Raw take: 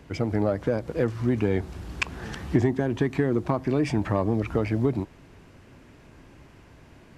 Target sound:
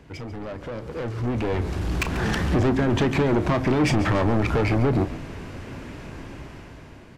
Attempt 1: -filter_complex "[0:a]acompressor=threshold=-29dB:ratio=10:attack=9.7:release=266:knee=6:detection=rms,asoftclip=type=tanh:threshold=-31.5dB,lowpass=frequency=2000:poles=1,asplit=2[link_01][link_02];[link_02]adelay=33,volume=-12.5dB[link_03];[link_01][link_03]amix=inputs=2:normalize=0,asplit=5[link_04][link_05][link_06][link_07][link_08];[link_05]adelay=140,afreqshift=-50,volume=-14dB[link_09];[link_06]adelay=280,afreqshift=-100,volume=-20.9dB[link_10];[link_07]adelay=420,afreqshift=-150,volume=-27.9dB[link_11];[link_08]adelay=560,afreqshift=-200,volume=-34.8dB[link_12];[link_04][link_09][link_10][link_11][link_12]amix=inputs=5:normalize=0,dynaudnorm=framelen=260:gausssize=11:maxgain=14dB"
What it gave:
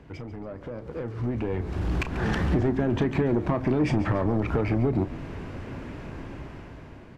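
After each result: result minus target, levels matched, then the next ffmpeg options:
downward compressor: peak gain reduction +9.5 dB; 8,000 Hz band −8.5 dB
-filter_complex "[0:a]acompressor=threshold=-18.5dB:ratio=10:attack=9.7:release=266:knee=6:detection=rms,asoftclip=type=tanh:threshold=-31.5dB,lowpass=frequency=2000:poles=1,asplit=2[link_01][link_02];[link_02]adelay=33,volume=-12.5dB[link_03];[link_01][link_03]amix=inputs=2:normalize=0,asplit=5[link_04][link_05][link_06][link_07][link_08];[link_05]adelay=140,afreqshift=-50,volume=-14dB[link_09];[link_06]adelay=280,afreqshift=-100,volume=-20.9dB[link_10];[link_07]adelay=420,afreqshift=-150,volume=-27.9dB[link_11];[link_08]adelay=560,afreqshift=-200,volume=-34.8dB[link_12];[link_04][link_09][link_10][link_11][link_12]amix=inputs=5:normalize=0,dynaudnorm=framelen=260:gausssize=11:maxgain=14dB"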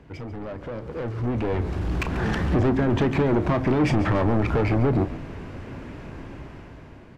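8,000 Hz band −8.0 dB
-filter_complex "[0:a]acompressor=threshold=-18.5dB:ratio=10:attack=9.7:release=266:knee=6:detection=rms,asoftclip=type=tanh:threshold=-31.5dB,lowpass=frequency=7900:poles=1,asplit=2[link_01][link_02];[link_02]adelay=33,volume=-12.5dB[link_03];[link_01][link_03]amix=inputs=2:normalize=0,asplit=5[link_04][link_05][link_06][link_07][link_08];[link_05]adelay=140,afreqshift=-50,volume=-14dB[link_09];[link_06]adelay=280,afreqshift=-100,volume=-20.9dB[link_10];[link_07]adelay=420,afreqshift=-150,volume=-27.9dB[link_11];[link_08]adelay=560,afreqshift=-200,volume=-34.8dB[link_12];[link_04][link_09][link_10][link_11][link_12]amix=inputs=5:normalize=0,dynaudnorm=framelen=260:gausssize=11:maxgain=14dB"

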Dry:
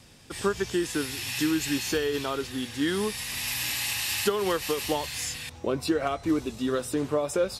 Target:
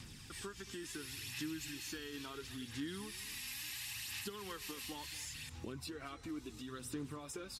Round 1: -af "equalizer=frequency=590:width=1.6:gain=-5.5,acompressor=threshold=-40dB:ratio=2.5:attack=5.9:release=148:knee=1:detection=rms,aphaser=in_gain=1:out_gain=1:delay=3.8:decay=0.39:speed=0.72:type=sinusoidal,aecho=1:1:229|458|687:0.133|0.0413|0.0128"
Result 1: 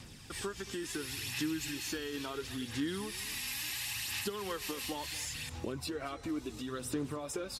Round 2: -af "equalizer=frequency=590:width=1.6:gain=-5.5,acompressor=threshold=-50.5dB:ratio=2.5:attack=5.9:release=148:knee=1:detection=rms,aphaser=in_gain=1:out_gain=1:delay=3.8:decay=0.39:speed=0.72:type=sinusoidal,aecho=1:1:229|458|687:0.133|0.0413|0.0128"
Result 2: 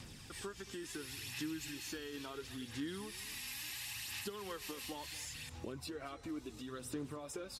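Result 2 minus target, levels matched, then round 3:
500 Hz band +2.5 dB
-af "equalizer=frequency=590:width=1.6:gain=-14.5,acompressor=threshold=-50.5dB:ratio=2.5:attack=5.9:release=148:knee=1:detection=rms,aphaser=in_gain=1:out_gain=1:delay=3.8:decay=0.39:speed=0.72:type=sinusoidal,aecho=1:1:229|458|687:0.133|0.0413|0.0128"

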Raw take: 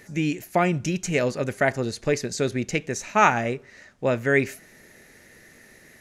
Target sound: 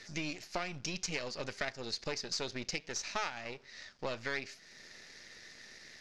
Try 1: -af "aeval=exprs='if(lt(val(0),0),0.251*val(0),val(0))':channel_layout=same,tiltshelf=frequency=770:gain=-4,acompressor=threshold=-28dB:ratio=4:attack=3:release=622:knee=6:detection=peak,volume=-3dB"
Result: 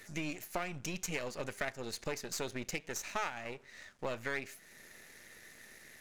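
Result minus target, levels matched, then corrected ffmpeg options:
4,000 Hz band −5.0 dB
-af "aeval=exprs='if(lt(val(0),0),0.251*val(0),val(0))':channel_layout=same,lowpass=frequency=5000:width_type=q:width=3.6,tiltshelf=frequency=770:gain=-4,acompressor=threshold=-28dB:ratio=4:attack=3:release=622:knee=6:detection=peak,volume=-3dB"

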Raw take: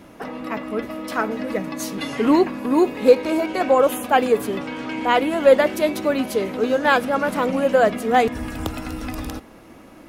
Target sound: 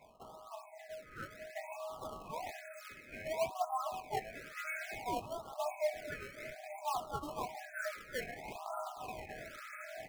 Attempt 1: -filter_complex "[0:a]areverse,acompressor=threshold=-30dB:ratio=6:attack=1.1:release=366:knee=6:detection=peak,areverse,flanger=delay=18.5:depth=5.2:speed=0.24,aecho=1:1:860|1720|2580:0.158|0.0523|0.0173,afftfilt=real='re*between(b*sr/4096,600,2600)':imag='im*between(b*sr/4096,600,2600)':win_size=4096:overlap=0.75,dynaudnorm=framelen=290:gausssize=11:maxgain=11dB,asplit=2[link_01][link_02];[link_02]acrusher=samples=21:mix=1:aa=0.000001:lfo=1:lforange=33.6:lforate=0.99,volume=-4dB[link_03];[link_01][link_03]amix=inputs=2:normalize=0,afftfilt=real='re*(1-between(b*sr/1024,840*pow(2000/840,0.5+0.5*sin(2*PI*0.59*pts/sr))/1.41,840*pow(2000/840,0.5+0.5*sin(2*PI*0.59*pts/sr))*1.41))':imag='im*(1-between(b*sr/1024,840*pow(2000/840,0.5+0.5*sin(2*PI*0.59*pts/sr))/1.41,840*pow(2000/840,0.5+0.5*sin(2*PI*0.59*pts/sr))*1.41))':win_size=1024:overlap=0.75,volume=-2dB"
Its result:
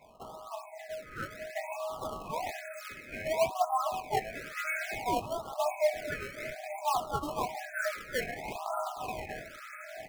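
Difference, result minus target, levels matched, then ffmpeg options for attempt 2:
downward compressor: peak gain reduction −7 dB
-filter_complex "[0:a]areverse,acompressor=threshold=-38.5dB:ratio=6:attack=1.1:release=366:knee=6:detection=peak,areverse,flanger=delay=18.5:depth=5.2:speed=0.24,aecho=1:1:860|1720|2580:0.158|0.0523|0.0173,afftfilt=real='re*between(b*sr/4096,600,2600)':imag='im*between(b*sr/4096,600,2600)':win_size=4096:overlap=0.75,dynaudnorm=framelen=290:gausssize=11:maxgain=11dB,asplit=2[link_01][link_02];[link_02]acrusher=samples=21:mix=1:aa=0.000001:lfo=1:lforange=33.6:lforate=0.99,volume=-4dB[link_03];[link_01][link_03]amix=inputs=2:normalize=0,afftfilt=real='re*(1-between(b*sr/1024,840*pow(2000/840,0.5+0.5*sin(2*PI*0.59*pts/sr))/1.41,840*pow(2000/840,0.5+0.5*sin(2*PI*0.59*pts/sr))*1.41))':imag='im*(1-between(b*sr/1024,840*pow(2000/840,0.5+0.5*sin(2*PI*0.59*pts/sr))/1.41,840*pow(2000/840,0.5+0.5*sin(2*PI*0.59*pts/sr))*1.41))':win_size=1024:overlap=0.75,volume=-2dB"

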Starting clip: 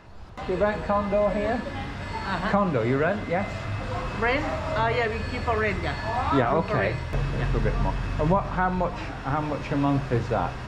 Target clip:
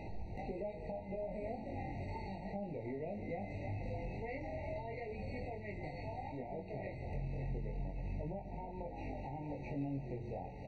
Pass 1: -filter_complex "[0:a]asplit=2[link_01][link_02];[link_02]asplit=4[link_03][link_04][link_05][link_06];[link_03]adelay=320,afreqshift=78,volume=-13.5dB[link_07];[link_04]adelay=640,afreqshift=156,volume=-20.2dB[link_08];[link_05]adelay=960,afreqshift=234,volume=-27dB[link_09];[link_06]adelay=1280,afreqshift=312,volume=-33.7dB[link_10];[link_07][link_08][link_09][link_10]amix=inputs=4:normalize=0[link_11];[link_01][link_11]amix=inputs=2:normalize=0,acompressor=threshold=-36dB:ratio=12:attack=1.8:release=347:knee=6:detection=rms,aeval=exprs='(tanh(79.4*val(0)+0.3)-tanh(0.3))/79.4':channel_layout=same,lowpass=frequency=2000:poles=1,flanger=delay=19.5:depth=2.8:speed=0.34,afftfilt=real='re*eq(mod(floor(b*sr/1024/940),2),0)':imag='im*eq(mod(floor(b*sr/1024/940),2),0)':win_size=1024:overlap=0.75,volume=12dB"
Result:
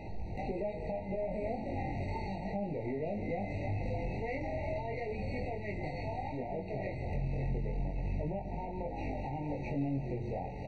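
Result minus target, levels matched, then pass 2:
downward compressor: peak gain reduction −7.5 dB
-filter_complex "[0:a]asplit=2[link_01][link_02];[link_02]asplit=4[link_03][link_04][link_05][link_06];[link_03]adelay=320,afreqshift=78,volume=-13.5dB[link_07];[link_04]adelay=640,afreqshift=156,volume=-20.2dB[link_08];[link_05]adelay=960,afreqshift=234,volume=-27dB[link_09];[link_06]adelay=1280,afreqshift=312,volume=-33.7dB[link_10];[link_07][link_08][link_09][link_10]amix=inputs=4:normalize=0[link_11];[link_01][link_11]amix=inputs=2:normalize=0,acompressor=threshold=-44dB:ratio=12:attack=1.8:release=347:knee=6:detection=rms,aeval=exprs='(tanh(79.4*val(0)+0.3)-tanh(0.3))/79.4':channel_layout=same,lowpass=frequency=2000:poles=1,flanger=delay=19.5:depth=2.8:speed=0.34,afftfilt=real='re*eq(mod(floor(b*sr/1024/940),2),0)':imag='im*eq(mod(floor(b*sr/1024/940),2),0)':win_size=1024:overlap=0.75,volume=12dB"

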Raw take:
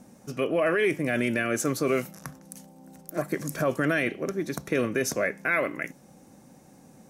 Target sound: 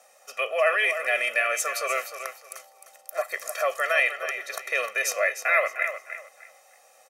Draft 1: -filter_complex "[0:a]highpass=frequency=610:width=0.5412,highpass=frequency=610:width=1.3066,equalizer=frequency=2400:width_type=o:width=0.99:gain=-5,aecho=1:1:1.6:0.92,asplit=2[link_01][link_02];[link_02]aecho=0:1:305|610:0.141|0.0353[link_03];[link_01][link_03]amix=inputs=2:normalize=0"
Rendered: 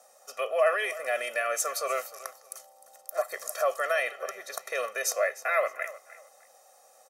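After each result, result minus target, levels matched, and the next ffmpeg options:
echo-to-direct −7 dB; 2,000 Hz band −3.5 dB
-filter_complex "[0:a]highpass=frequency=610:width=0.5412,highpass=frequency=610:width=1.3066,equalizer=frequency=2400:width_type=o:width=0.99:gain=-5,aecho=1:1:1.6:0.92,asplit=2[link_01][link_02];[link_02]aecho=0:1:305|610|915:0.316|0.0791|0.0198[link_03];[link_01][link_03]amix=inputs=2:normalize=0"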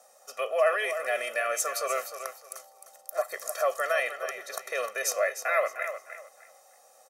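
2,000 Hz band −3.0 dB
-filter_complex "[0:a]highpass=frequency=610:width=0.5412,highpass=frequency=610:width=1.3066,equalizer=frequency=2400:width_type=o:width=0.99:gain=5.5,aecho=1:1:1.6:0.92,asplit=2[link_01][link_02];[link_02]aecho=0:1:305|610|915:0.316|0.0791|0.0198[link_03];[link_01][link_03]amix=inputs=2:normalize=0"

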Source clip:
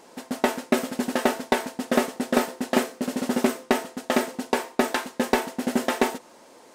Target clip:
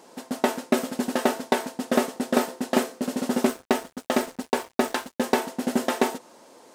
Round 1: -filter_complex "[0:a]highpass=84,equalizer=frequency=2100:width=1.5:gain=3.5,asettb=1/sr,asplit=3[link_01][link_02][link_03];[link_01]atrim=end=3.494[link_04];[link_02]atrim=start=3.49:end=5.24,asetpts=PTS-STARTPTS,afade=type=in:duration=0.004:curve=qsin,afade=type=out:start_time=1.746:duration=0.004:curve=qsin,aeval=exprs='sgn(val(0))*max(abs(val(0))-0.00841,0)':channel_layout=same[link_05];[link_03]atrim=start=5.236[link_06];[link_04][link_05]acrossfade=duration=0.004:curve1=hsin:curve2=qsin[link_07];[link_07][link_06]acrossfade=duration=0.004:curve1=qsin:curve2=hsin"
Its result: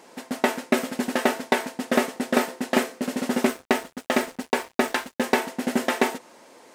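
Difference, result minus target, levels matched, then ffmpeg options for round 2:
2,000 Hz band +4.0 dB
-filter_complex "[0:a]highpass=84,equalizer=frequency=2100:width=1.5:gain=-3,asettb=1/sr,asplit=3[link_01][link_02][link_03];[link_01]atrim=end=3.494[link_04];[link_02]atrim=start=3.49:end=5.24,asetpts=PTS-STARTPTS,afade=type=in:duration=0.004:curve=qsin,afade=type=out:start_time=1.746:duration=0.004:curve=qsin,aeval=exprs='sgn(val(0))*max(abs(val(0))-0.00841,0)':channel_layout=same[link_05];[link_03]atrim=start=5.236[link_06];[link_04][link_05]acrossfade=duration=0.004:curve1=hsin:curve2=qsin[link_07];[link_07][link_06]acrossfade=duration=0.004:curve1=qsin:curve2=hsin"

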